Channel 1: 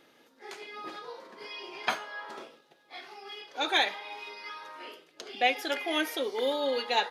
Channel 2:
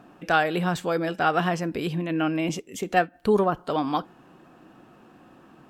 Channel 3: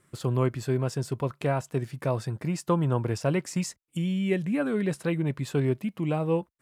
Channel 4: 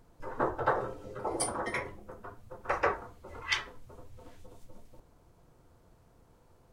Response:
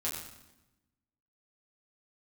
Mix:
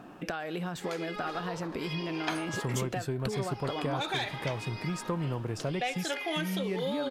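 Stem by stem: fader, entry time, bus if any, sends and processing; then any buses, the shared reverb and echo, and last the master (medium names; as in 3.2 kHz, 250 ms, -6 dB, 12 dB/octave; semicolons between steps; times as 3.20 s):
+1.5 dB, 0.40 s, bus A, no send, none
+2.5 dB, 0.00 s, bus B, no send, compression, threshold -29 dBFS, peak gain reduction 13.5 dB
-2.0 dB, 2.40 s, bus A, no send, none
-12.0 dB, 0.95 s, bus B, no send, none
bus A: 0.0 dB, saturation -16 dBFS, distortion -20 dB; compression, threshold -29 dBFS, peak gain reduction 8.5 dB
bus B: 0.0 dB, compression 6:1, threshold -32 dBFS, peak gain reduction 8.5 dB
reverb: none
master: none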